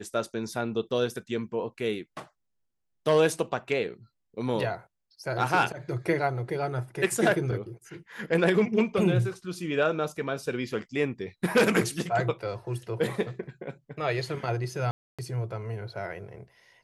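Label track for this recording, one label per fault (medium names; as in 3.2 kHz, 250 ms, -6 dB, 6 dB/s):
14.910000	15.190000	dropout 276 ms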